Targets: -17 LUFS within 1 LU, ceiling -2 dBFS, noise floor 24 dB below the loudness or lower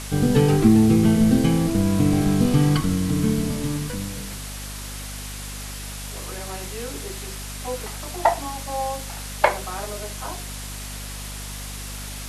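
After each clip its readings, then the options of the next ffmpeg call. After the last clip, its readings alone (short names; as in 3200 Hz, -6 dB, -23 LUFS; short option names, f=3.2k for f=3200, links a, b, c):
hum 50 Hz; harmonics up to 250 Hz; hum level -33 dBFS; noise floor -34 dBFS; noise floor target -48 dBFS; loudness -23.5 LUFS; peak -2.0 dBFS; loudness target -17.0 LUFS
-> -af "bandreject=f=50:t=h:w=6,bandreject=f=100:t=h:w=6,bandreject=f=150:t=h:w=6,bandreject=f=200:t=h:w=6,bandreject=f=250:t=h:w=6"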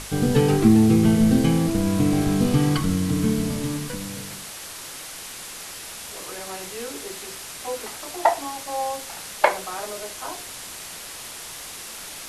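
hum none; noise floor -38 dBFS; noise floor target -47 dBFS
-> -af "afftdn=nr=9:nf=-38"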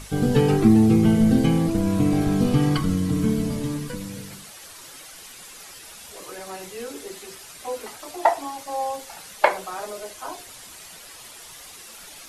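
noise floor -43 dBFS; noise floor target -46 dBFS
-> -af "afftdn=nr=6:nf=-43"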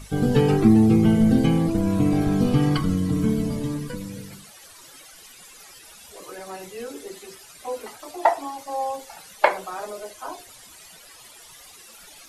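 noise floor -47 dBFS; loudness -21.5 LUFS; peak -2.0 dBFS; loudness target -17.0 LUFS
-> -af "volume=4.5dB,alimiter=limit=-2dB:level=0:latency=1"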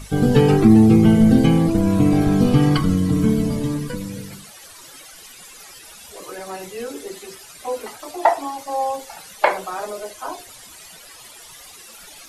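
loudness -17.5 LUFS; peak -2.0 dBFS; noise floor -43 dBFS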